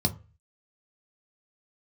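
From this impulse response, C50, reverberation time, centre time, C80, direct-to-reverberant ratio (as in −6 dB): 17.0 dB, 0.35 s, 6 ms, 23.0 dB, 4.5 dB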